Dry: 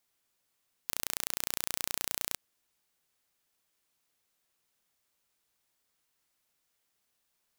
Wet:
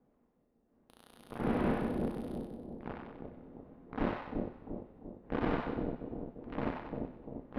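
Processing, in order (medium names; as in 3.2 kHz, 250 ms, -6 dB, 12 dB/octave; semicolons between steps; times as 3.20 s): sorted samples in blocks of 256 samples; wind noise 440 Hz -48 dBFS; fifteen-band graphic EQ 100 Hz -10 dB, 250 Hz +7 dB, 10 kHz +9 dB; waveshaping leveller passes 5; transient shaper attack 0 dB, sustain +6 dB; level rider gain up to 14 dB; saturation -15.5 dBFS, distortion -7 dB; distance through air 390 m; two-band feedback delay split 700 Hz, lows 346 ms, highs 94 ms, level -3 dB; on a send at -9 dB: reverberation, pre-delay 3 ms; on the sum: trim -7 dB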